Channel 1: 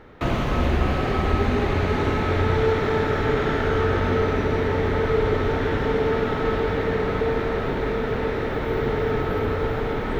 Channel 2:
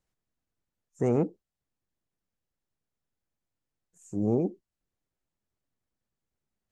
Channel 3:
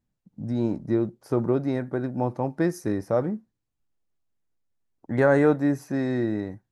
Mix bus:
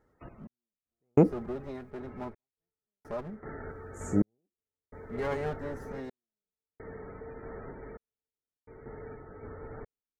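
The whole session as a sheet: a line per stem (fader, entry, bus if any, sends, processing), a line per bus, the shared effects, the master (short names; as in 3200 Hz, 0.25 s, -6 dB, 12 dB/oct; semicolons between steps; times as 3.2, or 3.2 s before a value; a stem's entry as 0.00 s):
-17.5 dB, 0.00 s, no send, loudest bins only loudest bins 64; random-step tremolo, depth 90%
-5.0 dB, 0.00 s, muted 1.91–3.69, no send, AGC gain up to 13 dB
-13.5 dB, 0.00 s, no send, minimum comb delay 4.9 ms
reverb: off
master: step gate "xx...xxx" 64 bpm -60 dB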